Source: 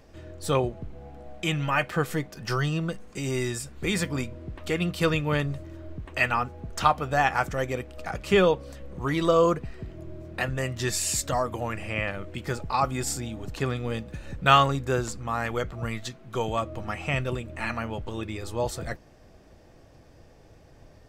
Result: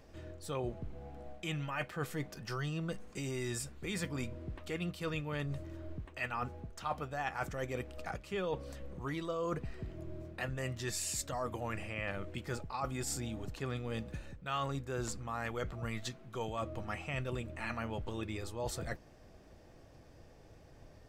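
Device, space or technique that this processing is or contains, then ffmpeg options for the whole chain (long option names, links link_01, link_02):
compression on the reversed sound: -af "areverse,acompressor=threshold=-30dB:ratio=6,areverse,volume=-4.5dB"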